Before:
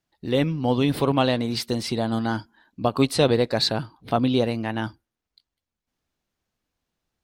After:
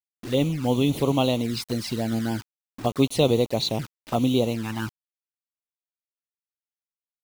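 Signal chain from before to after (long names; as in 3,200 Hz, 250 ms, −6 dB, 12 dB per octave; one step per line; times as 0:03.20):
bit reduction 6 bits
flanger swept by the level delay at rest 5.4 ms, full sweep at −19 dBFS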